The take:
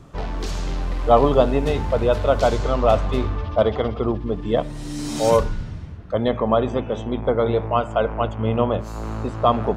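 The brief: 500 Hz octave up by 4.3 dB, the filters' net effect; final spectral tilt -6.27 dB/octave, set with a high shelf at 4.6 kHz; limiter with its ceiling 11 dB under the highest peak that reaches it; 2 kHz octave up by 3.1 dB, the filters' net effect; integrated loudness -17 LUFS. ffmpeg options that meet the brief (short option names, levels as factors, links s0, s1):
-af "equalizer=f=500:t=o:g=5,equalizer=f=2000:t=o:g=4.5,highshelf=f=4600:g=-3,volume=1.88,alimiter=limit=0.531:level=0:latency=1"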